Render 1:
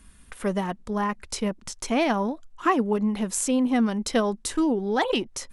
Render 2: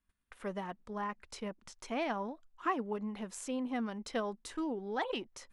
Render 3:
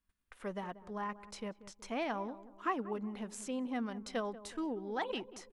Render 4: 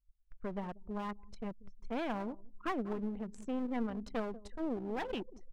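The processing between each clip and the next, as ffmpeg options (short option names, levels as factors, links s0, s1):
-af "agate=range=0.126:threshold=0.00562:ratio=16:detection=peak,lowpass=f=2600:p=1,lowshelf=f=420:g=-8,volume=0.376"
-filter_complex "[0:a]asplit=2[s0][s1];[s1]adelay=186,lowpass=f=920:p=1,volume=0.2,asplit=2[s2][s3];[s3]adelay=186,lowpass=f=920:p=1,volume=0.48,asplit=2[s4][s5];[s5]adelay=186,lowpass=f=920:p=1,volume=0.48,asplit=2[s6][s7];[s7]adelay=186,lowpass=f=920:p=1,volume=0.48,asplit=2[s8][s9];[s9]adelay=186,lowpass=f=920:p=1,volume=0.48[s10];[s0][s2][s4][s6][s8][s10]amix=inputs=6:normalize=0,volume=0.841"
-af "anlmdn=0.0631,aemphasis=mode=reproduction:type=bsi,aeval=exprs='clip(val(0),-1,0.00891)':c=same"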